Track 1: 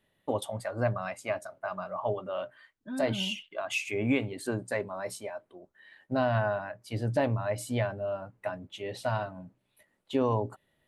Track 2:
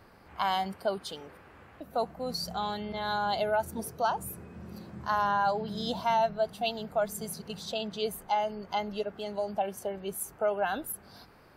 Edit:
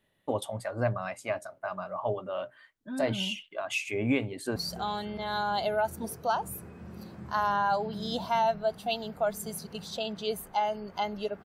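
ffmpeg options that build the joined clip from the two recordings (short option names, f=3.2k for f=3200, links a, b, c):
-filter_complex "[0:a]apad=whole_dur=11.44,atrim=end=11.44,atrim=end=4.562[a];[1:a]atrim=start=2.308:end=9.19[b];[a][b]acrossfade=d=0.004:c1=hsin:c2=hsin,asplit=2[c][d];[d]afade=t=in:st=4.3:d=0.01,afade=t=out:st=4.56:d=0.01,aecho=0:1:290|580|870|1160:0.133352|0.0666761|0.033338|0.016669[e];[c][e]amix=inputs=2:normalize=0"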